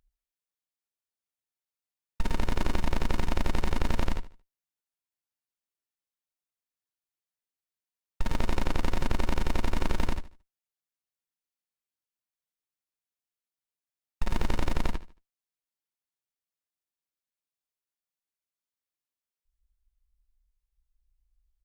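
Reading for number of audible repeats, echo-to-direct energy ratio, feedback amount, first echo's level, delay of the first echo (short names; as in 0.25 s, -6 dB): 2, -15.5 dB, 32%, -16.0 dB, 75 ms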